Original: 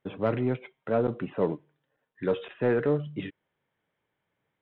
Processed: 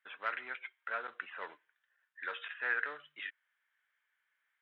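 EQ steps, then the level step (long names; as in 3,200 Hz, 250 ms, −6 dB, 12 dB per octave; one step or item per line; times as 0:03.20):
high-pass with resonance 1,600 Hz, resonance Q 3.1
−3.5 dB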